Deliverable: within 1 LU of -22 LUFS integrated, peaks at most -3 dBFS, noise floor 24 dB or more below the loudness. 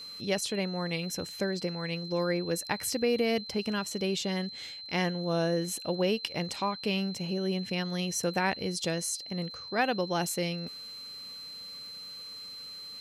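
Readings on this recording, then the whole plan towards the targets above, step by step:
tick rate 32 per s; steady tone 4.1 kHz; tone level -41 dBFS; loudness -32.0 LUFS; peak level -13.5 dBFS; loudness target -22.0 LUFS
-> de-click; band-stop 4.1 kHz, Q 30; trim +10 dB

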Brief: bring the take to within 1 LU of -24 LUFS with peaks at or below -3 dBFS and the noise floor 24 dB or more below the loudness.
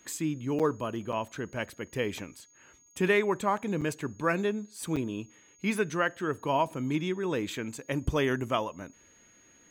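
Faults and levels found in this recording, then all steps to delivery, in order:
dropouts 4; longest dropout 6.8 ms; steady tone 6.6 kHz; tone level -59 dBFS; loudness -31.0 LUFS; peak level -13.0 dBFS; loudness target -24.0 LUFS
-> interpolate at 0.59/1.12/3.81/4.96 s, 6.8 ms; band-stop 6.6 kHz, Q 30; trim +7 dB

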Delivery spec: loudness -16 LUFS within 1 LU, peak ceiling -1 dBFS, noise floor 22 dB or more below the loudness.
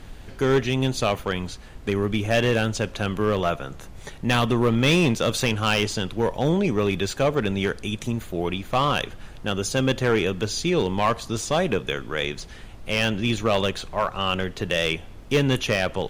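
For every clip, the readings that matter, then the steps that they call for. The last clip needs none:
clipped samples 0.9%; clipping level -13.5 dBFS; noise floor -41 dBFS; noise floor target -46 dBFS; loudness -24.0 LUFS; peak level -13.5 dBFS; loudness target -16.0 LUFS
-> clip repair -13.5 dBFS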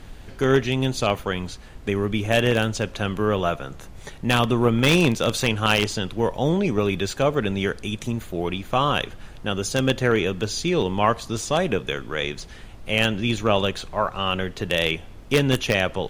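clipped samples 0.0%; noise floor -41 dBFS; noise floor target -45 dBFS
-> noise print and reduce 6 dB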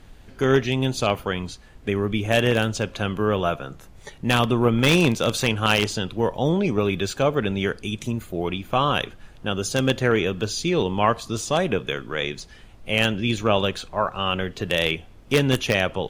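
noise floor -47 dBFS; loudness -23.0 LUFS; peak level -4.5 dBFS; loudness target -16.0 LUFS
-> trim +7 dB; peak limiter -1 dBFS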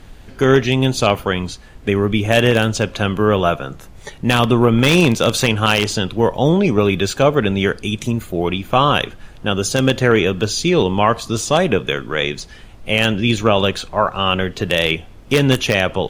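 loudness -16.5 LUFS; peak level -1.0 dBFS; noise floor -40 dBFS

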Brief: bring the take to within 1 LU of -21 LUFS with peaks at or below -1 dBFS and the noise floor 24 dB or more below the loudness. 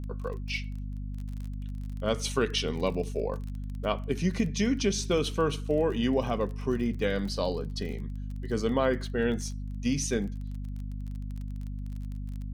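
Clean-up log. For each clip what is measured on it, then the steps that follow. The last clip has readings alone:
tick rate 27 per s; hum 50 Hz; highest harmonic 250 Hz; hum level -33 dBFS; loudness -31.0 LUFS; peak level -13.0 dBFS; loudness target -21.0 LUFS
-> de-click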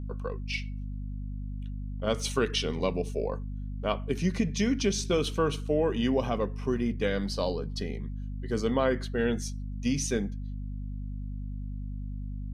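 tick rate 0 per s; hum 50 Hz; highest harmonic 250 Hz; hum level -33 dBFS
-> de-hum 50 Hz, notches 5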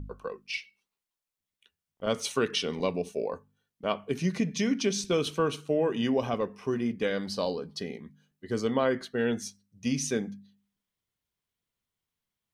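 hum not found; loudness -30.5 LUFS; peak level -13.0 dBFS; loudness target -21.0 LUFS
-> trim +9.5 dB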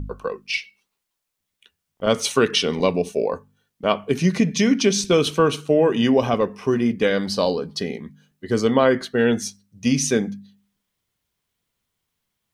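loudness -21.0 LUFS; peak level -3.5 dBFS; noise floor -80 dBFS

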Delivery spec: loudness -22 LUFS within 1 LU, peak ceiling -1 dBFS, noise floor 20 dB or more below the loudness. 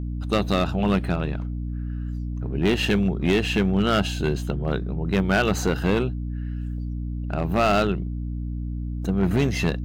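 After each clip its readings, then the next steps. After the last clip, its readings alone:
clipped samples 1.6%; clipping level -14.5 dBFS; hum 60 Hz; highest harmonic 300 Hz; hum level -27 dBFS; loudness -24.5 LUFS; peak level -14.5 dBFS; loudness target -22.0 LUFS
-> clip repair -14.5 dBFS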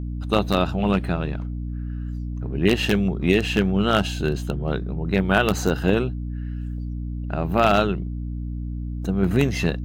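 clipped samples 0.0%; hum 60 Hz; highest harmonic 300 Hz; hum level -26 dBFS
-> hum notches 60/120/180/240/300 Hz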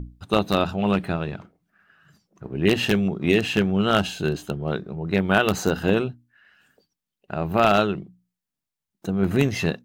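hum not found; loudness -23.0 LUFS; peak level -4.5 dBFS; loudness target -22.0 LUFS
-> trim +1 dB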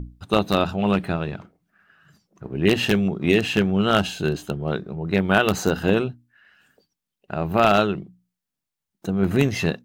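loudness -22.0 LUFS; peak level -3.5 dBFS; noise floor -85 dBFS

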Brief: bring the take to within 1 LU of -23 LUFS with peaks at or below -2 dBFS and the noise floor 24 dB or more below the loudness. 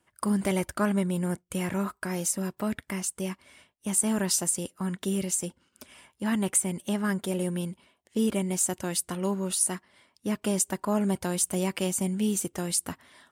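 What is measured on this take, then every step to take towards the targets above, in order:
loudness -28.5 LUFS; peak level -10.0 dBFS; loudness target -23.0 LUFS
-> trim +5.5 dB

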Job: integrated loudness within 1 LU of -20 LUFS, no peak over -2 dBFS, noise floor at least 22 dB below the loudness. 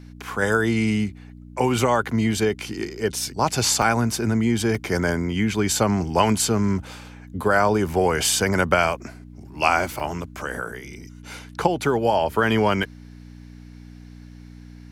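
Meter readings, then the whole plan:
dropouts 4; longest dropout 2.7 ms; hum 60 Hz; highest harmonic 300 Hz; hum level -39 dBFS; loudness -22.0 LUFS; peak level -1.0 dBFS; loudness target -20.0 LUFS
-> interpolate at 3.82/4.75/10.00/12.83 s, 2.7 ms; de-hum 60 Hz, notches 5; trim +2 dB; peak limiter -2 dBFS

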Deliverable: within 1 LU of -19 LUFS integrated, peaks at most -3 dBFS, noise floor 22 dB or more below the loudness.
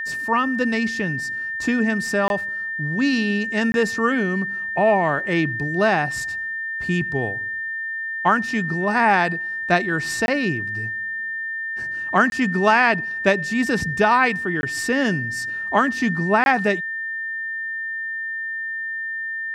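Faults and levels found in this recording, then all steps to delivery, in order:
dropouts 6; longest dropout 21 ms; steady tone 1.8 kHz; tone level -25 dBFS; loudness -21.5 LUFS; peak level -3.0 dBFS; loudness target -19.0 LUFS
-> interpolate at 2.28/3.72/10.26/12.30/14.61/16.44 s, 21 ms; band-stop 1.8 kHz, Q 30; trim +2.5 dB; peak limiter -3 dBFS

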